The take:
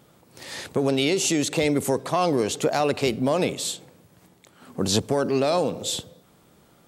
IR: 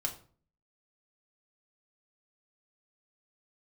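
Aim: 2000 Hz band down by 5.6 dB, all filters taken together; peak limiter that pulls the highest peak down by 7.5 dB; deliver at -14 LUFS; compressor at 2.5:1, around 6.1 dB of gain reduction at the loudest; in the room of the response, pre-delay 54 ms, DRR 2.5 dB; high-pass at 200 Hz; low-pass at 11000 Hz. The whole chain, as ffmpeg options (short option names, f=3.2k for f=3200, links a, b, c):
-filter_complex "[0:a]highpass=200,lowpass=11k,equalizer=f=2k:t=o:g=-7.5,acompressor=threshold=-28dB:ratio=2.5,alimiter=limit=-24dB:level=0:latency=1,asplit=2[a][b];[1:a]atrim=start_sample=2205,adelay=54[c];[b][c]afir=irnorm=-1:irlink=0,volume=-4.5dB[d];[a][d]amix=inputs=2:normalize=0,volume=18dB"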